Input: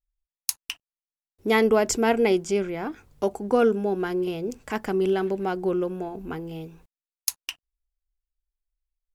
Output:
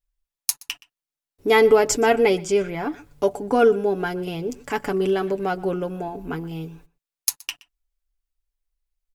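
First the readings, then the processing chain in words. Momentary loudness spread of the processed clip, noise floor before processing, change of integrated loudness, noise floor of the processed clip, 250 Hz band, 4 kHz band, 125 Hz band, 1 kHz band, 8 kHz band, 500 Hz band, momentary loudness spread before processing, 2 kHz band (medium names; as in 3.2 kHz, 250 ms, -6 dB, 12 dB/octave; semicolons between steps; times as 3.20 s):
15 LU, under -85 dBFS, +3.0 dB, under -85 dBFS, 0.0 dB, +3.5 dB, +2.5 dB, +4.5 dB, +4.0 dB, +4.0 dB, 16 LU, +4.0 dB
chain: comb 7 ms, depth 58%; echo from a far wall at 21 m, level -21 dB; trim +2.5 dB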